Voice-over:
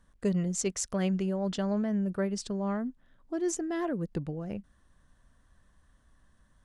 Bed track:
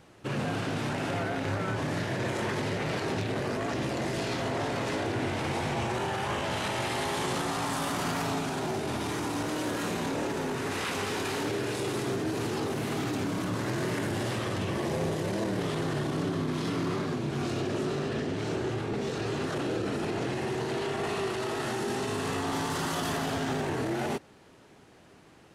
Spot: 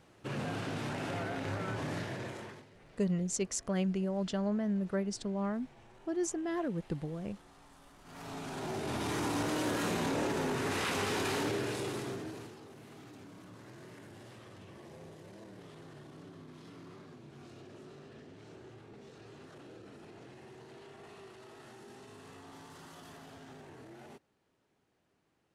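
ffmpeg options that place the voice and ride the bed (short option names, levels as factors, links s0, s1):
-filter_complex "[0:a]adelay=2750,volume=0.708[s0];[1:a]volume=11.2,afade=t=out:st=1.94:d=0.72:silence=0.0749894,afade=t=in:st=8.04:d=1.2:silence=0.0446684,afade=t=out:st=11.34:d=1.22:silence=0.105925[s1];[s0][s1]amix=inputs=2:normalize=0"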